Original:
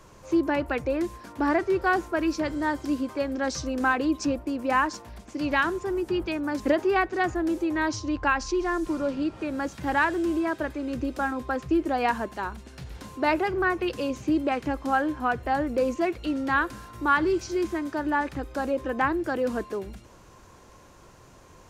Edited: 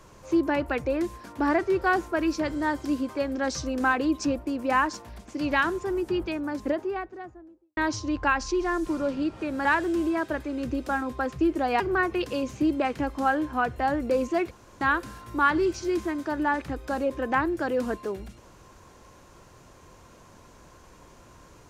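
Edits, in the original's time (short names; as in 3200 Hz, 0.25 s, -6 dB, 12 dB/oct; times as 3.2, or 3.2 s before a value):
5.95–7.77 studio fade out
9.65–9.95 cut
12.1–13.47 cut
16.18–16.48 room tone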